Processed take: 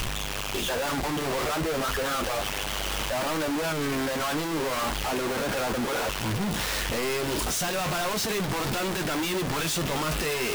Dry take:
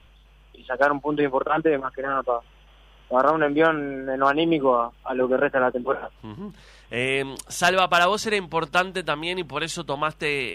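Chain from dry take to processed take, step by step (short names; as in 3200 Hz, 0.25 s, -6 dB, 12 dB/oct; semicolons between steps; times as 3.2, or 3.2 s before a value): infinite clipping; flange 0.34 Hz, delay 8.6 ms, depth 4.9 ms, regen -40%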